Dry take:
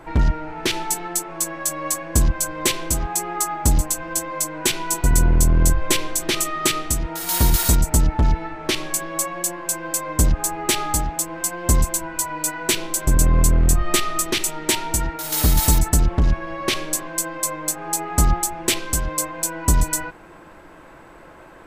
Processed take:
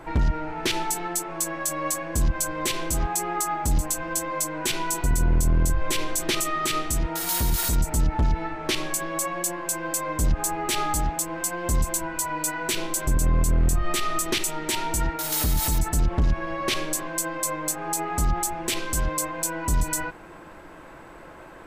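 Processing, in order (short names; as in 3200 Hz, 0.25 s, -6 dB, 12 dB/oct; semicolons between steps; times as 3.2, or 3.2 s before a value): limiter -15.5 dBFS, peak gain reduction 10.5 dB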